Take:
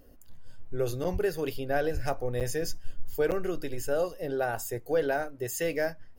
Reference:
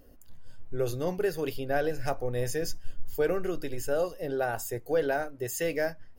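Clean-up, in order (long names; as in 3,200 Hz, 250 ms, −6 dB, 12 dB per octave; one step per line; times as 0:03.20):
0:01.12–0:01.24: high-pass filter 140 Hz 24 dB per octave
0:01.93–0:02.05: high-pass filter 140 Hz 24 dB per octave
repair the gap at 0:01.04/0:02.40/0:03.31, 7.9 ms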